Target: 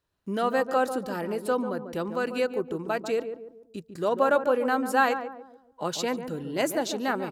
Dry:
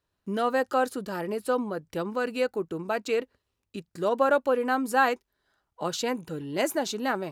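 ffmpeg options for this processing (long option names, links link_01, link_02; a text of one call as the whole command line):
ffmpeg -i in.wav -filter_complex "[0:a]asettb=1/sr,asplit=3[link_01][link_02][link_03];[link_01]atrim=end=3.024[link_04];[link_02]atrim=start=3.02:end=3.89,asetpts=PTS-STARTPTS,afade=type=in:duration=0.004:curve=qsin,afade=type=out:start_time=0.866:duration=0.004:curve=qsin,equalizer=frequency=2000:width_type=o:width=2.1:gain=-5.5[link_05];[link_03]atrim=start=3.886[link_06];[link_04][link_05]acrossfade=duration=0.004:curve1=hsin:curve2=qsin[link_07];[link_07][link_06]acrossfade=duration=0.004:curve1=qsin:curve2=hsin,asplit=2[link_08][link_09];[link_09]adelay=144,lowpass=frequency=880:poles=1,volume=-7.5dB,asplit=2[link_10][link_11];[link_11]adelay=144,lowpass=frequency=880:poles=1,volume=0.45,asplit=2[link_12][link_13];[link_13]adelay=144,lowpass=frequency=880:poles=1,volume=0.45,asplit=2[link_14][link_15];[link_15]adelay=144,lowpass=frequency=880:poles=1,volume=0.45,asplit=2[link_16][link_17];[link_17]adelay=144,lowpass=frequency=880:poles=1,volume=0.45[link_18];[link_08][link_10][link_12][link_14][link_16][link_18]amix=inputs=6:normalize=0" out.wav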